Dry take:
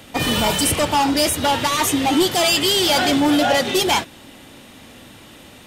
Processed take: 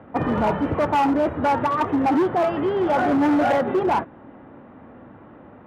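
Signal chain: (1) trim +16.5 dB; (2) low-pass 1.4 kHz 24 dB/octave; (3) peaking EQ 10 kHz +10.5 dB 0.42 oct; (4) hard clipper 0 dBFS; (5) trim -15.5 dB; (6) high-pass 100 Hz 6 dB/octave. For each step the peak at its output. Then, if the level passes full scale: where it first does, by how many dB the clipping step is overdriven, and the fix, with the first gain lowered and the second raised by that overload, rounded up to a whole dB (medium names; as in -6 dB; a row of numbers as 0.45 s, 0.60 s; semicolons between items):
+7.0 dBFS, +7.5 dBFS, +7.5 dBFS, 0.0 dBFS, -15.5 dBFS, -12.5 dBFS; step 1, 7.5 dB; step 1 +8.5 dB, step 5 -7.5 dB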